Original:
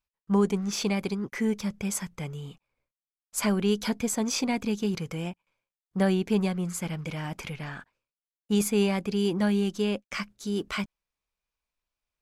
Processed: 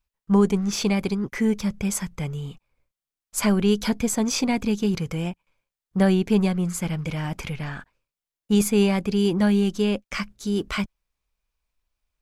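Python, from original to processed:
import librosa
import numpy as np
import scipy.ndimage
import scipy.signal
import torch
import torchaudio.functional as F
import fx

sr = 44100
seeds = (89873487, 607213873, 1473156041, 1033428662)

y = fx.low_shelf(x, sr, hz=91.0, db=11.5)
y = y * 10.0 ** (3.5 / 20.0)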